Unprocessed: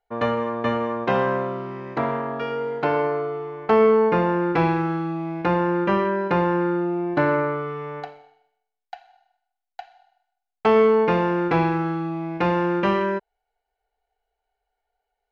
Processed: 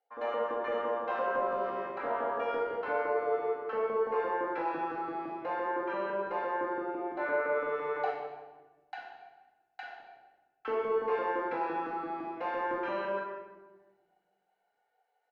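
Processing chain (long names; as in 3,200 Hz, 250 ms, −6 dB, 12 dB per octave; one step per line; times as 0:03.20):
high-pass filter 190 Hz 12 dB per octave
bass and treble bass +5 dB, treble −4 dB
reversed playback
downward compressor 6 to 1, threshold −32 dBFS, peak gain reduction 17.5 dB
reversed playback
auto-filter high-pass saw up 5.9 Hz 380–1,700 Hz
double-tracking delay 41 ms −12 dB
convolution reverb RT60 1.2 s, pre-delay 4 ms, DRR −5.5 dB
level −6.5 dB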